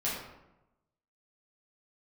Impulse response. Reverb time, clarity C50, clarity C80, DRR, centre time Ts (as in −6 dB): 0.95 s, 1.5 dB, 4.5 dB, −8.5 dB, 58 ms